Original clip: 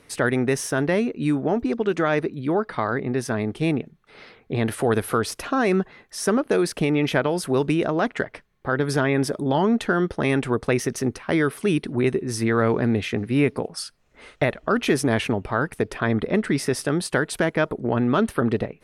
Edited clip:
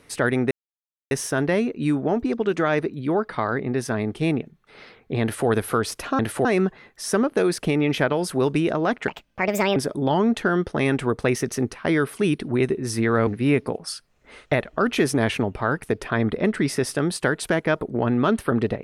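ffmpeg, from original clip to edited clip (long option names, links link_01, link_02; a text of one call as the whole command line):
ffmpeg -i in.wav -filter_complex "[0:a]asplit=7[link_01][link_02][link_03][link_04][link_05][link_06][link_07];[link_01]atrim=end=0.51,asetpts=PTS-STARTPTS,afade=type=out:start_time=0.506:duration=0.004:curve=hsin,apad=pad_dur=0.6[link_08];[link_02]atrim=start=0.51:end=5.592,asetpts=PTS-STARTPTS,afade=type=in:duration=0.004:curve=hsin[link_09];[link_03]atrim=start=4.618:end=4.882[link_10];[link_04]atrim=start=5.588:end=8.224[link_11];[link_05]atrim=start=8.22:end=9.2,asetpts=PTS-STARTPTS,asetrate=63504,aresample=44100,atrim=end_sample=30012,asetpts=PTS-STARTPTS[link_12];[link_06]atrim=start=9.196:end=12.712[link_13];[link_07]atrim=start=13.168[link_14];[link_08][link_09]concat=n=2:v=0:a=1[link_15];[link_15][link_10]acrossfade=duration=0.004:curve1=hsin:curve2=hsin[link_16];[link_16][link_11]acrossfade=duration=0.004:curve1=hsin:curve2=hsin[link_17];[link_17][link_12]acrossfade=duration=0.004:curve1=hsin:curve2=hsin[link_18];[link_18][link_13]acrossfade=duration=0.004:curve1=hsin:curve2=hsin[link_19];[link_19][link_14]acrossfade=duration=0.004:curve1=hsin:curve2=hsin" out.wav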